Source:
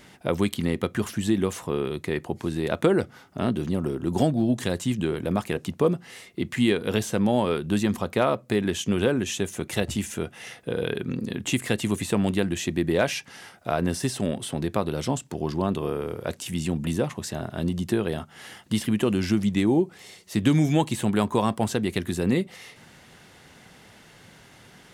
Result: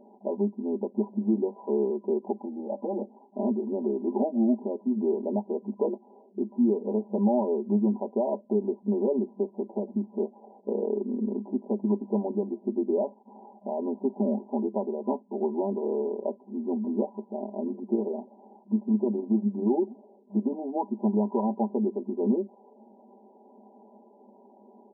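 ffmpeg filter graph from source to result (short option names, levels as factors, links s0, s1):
-filter_complex "[0:a]asettb=1/sr,asplit=3[s0][s1][s2];[s0]atrim=end=2.404[s3];[s1]atrim=start=2.4:end=3.01,asetpts=PTS-STARTPTS,afade=t=in:d=0.004:c=qsin,afade=t=out:st=0.606:d=0.004:c=qsin,aecho=1:1:3.7:0.79,atrim=end_sample=26901,acompressor=threshold=0.0501:ratio=2:attack=3.2:release=140:knee=1:detection=peak,lowshelf=f=420:g=-8[s4];[s2]atrim=start=3.006[s5];[s3][s4]acrossfade=d=0.004:c1=hsin:c2=qsin[s6];[s6][s5]acrossfade=d=0.004:c1=qsin:c2=hsin,asettb=1/sr,asplit=3[s7][s8][s9];[s7]atrim=end=13.074[s10];[s8]atrim=start=13.07:end=14.66,asetpts=PTS-STARTPTS,afade=t=in:d=0.004:c=qsin,afade=t=out:st=1.586:d=0.004:c=qsin,lowpass=f=1400:t=q:w=3.2,equalizer=f=210:w=2.6:g=5[s11];[s9]atrim=start=14.656[s12];[s10][s11]acrossfade=d=0.004:c1=hsin:c2=qsin[s13];[s13][s12]acrossfade=d=0.004:c1=qsin:c2=hsin,asettb=1/sr,asplit=3[s14][s15][s16];[s14]atrim=end=17.114[s17];[s15]atrim=start=17.11:end=20.52,asetpts=PTS-STARTPTS,afade=t=in:d=0.004:c=qsin,afade=t=out:st=3.406:d=0.004:c=qsin,tremolo=f=25:d=0.4,asplit=5[s18][s19][s20][s21][s22];[s19]adelay=128,afreqshift=-98,volume=0.0794[s23];[s20]adelay=256,afreqshift=-196,volume=0.0468[s24];[s21]adelay=384,afreqshift=-294,volume=0.0275[s25];[s22]adelay=512,afreqshift=-392,volume=0.0164[s26];[s18][s23][s24][s25][s26]amix=inputs=5:normalize=0,atrim=end_sample=150381[s27];[s16]atrim=start=20.516[s28];[s17][s27]acrossfade=d=0.004:c1=hsin:c2=qsin[s29];[s29][s28]acrossfade=d=0.004:c1=qsin:c2=hsin,aecho=1:1:5:0.92,alimiter=limit=0.211:level=0:latency=1:release=374,afftfilt=real='re*between(b*sr/4096,200,1000)':imag='im*between(b*sr/4096,200,1000)':win_size=4096:overlap=0.75,volume=0.891"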